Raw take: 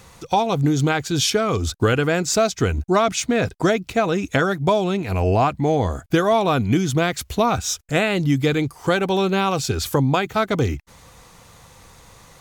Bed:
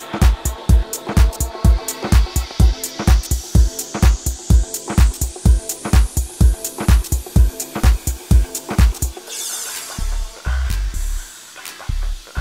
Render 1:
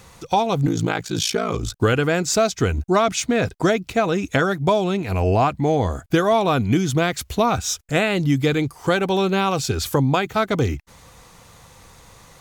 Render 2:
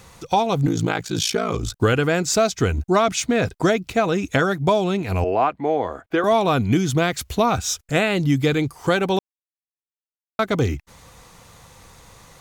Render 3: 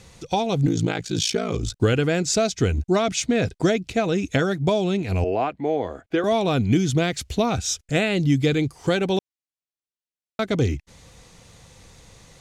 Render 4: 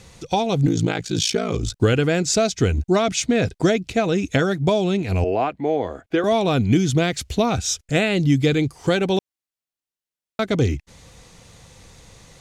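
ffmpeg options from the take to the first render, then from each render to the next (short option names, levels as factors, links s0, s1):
-filter_complex "[0:a]asettb=1/sr,asplit=3[s0][s1][s2];[s0]atrim=end=0.664[s3];[s1]atrim=start=0.66:end=1.76,asetpts=PTS-STARTPTS,afade=t=in:d=0.004:c=qsin,afade=t=out:st=1.096:d=0.004:c=qsin,aeval=exprs='val(0)*sin(2*PI*28*n/s)':c=same[s4];[s2]atrim=start=1.756[s5];[s3][s4]acrossfade=d=0.004:c1=hsin:c2=qsin[s6];[s6][s5]acrossfade=d=0.004:c1=qsin:c2=hsin"
-filter_complex "[0:a]asettb=1/sr,asplit=3[s0][s1][s2];[s0]atrim=end=5.244[s3];[s1]atrim=start=5.24:end=6.24,asetpts=PTS-STARTPTS,afade=t=in:d=0.004:c=qsin,afade=t=out:st=0.996:d=0.004:c=qsin,acrossover=split=280 3000:gain=0.126 1 0.126[s4][s5][s6];[s4][s5][s6]amix=inputs=3:normalize=0[s7];[s2]atrim=start=6.236[s8];[s3][s7]acrossfade=d=0.004:c1=hsin:c2=qsin[s9];[s9][s8]acrossfade=d=0.004:c1=qsin:c2=hsin,asplit=3[s10][s11][s12];[s10]atrim=end=9.19,asetpts=PTS-STARTPTS,afade=t=out:st=9.186:d=0.004:c=hsin[s13];[s11]atrim=start=9.19:end=10.39,asetpts=PTS-STARTPTS,volume=0[s14];[s12]atrim=start=10.39,asetpts=PTS-STARTPTS,afade=t=in:d=0.004:c=hsin[s15];[s13][s14][s15]concat=n=3:v=0:a=1"
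-af "lowpass=8700,equalizer=f=1100:t=o:w=1.2:g=-9"
-af "volume=1.26"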